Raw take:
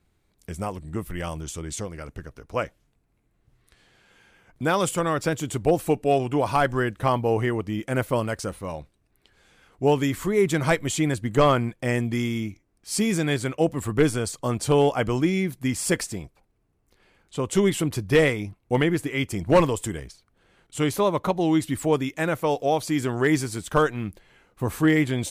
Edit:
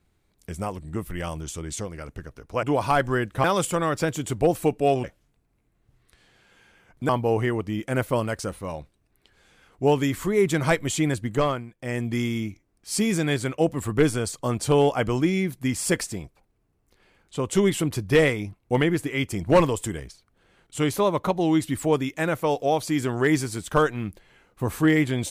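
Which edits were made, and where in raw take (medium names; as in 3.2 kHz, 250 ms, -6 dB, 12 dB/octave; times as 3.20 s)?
2.63–4.68 s: swap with 6.28–7.09 s
11.19–12.17 s: dip -13.5 dB, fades 0.47 s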